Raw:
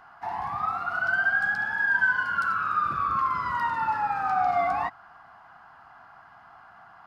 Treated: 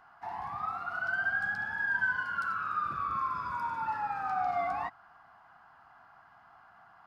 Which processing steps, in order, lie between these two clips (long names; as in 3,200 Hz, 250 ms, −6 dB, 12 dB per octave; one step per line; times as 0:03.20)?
0:01.21–0:02.22: low-shelf EQ 140 Hz +8.5 dB
0:03.09–0:03.84: healed spectral selection 1,500–4,800 Hz before
level −7 dB